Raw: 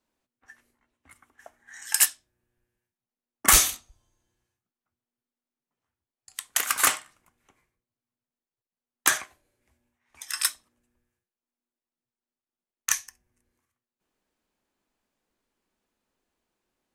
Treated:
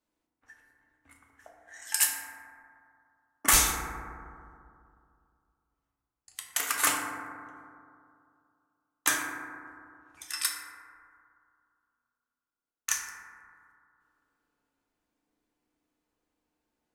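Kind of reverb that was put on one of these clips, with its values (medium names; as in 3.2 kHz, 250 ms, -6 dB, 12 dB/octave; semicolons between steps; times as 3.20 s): FDN reverb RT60 2.4 s, low-frequency decay 1.1×, high-frequency decay 0.25×, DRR -0.5 dB; trim -5.5 dB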